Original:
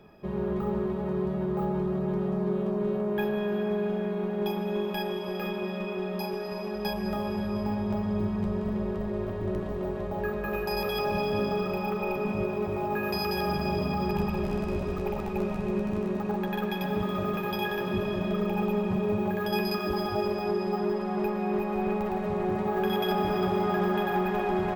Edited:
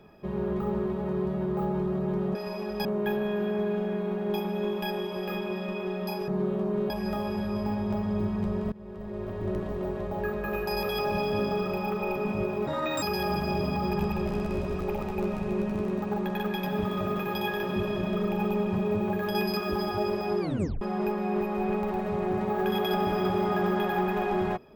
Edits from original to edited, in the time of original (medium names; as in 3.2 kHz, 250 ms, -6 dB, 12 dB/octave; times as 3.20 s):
2.35–2.97 s: swap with 6.40–6.90 s
8.72–9.49 s: fade in linear, from -22 dB
12.67–13.20 s: speed 150%
20.58 s: tape stop 0.41 s